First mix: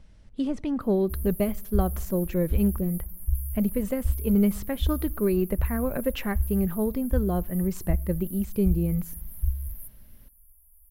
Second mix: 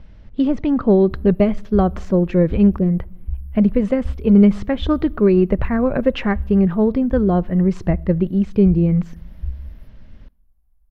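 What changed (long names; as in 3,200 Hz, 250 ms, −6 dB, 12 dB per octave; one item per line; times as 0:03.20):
speech +10.5 dB
master: add high-frequency loss of the air 200 metres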